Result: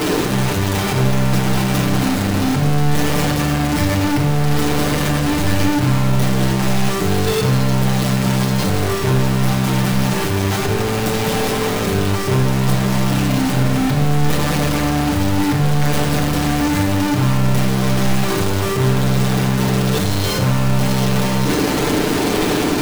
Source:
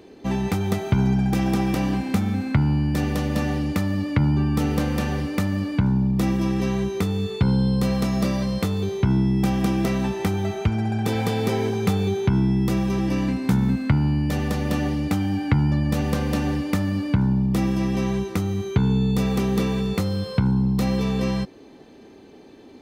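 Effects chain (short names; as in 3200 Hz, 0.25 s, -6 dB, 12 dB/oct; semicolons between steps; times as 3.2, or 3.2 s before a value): infinite clipping; reverb RT60 0.70 s, pre-delay 7 ms, DRR -2 dB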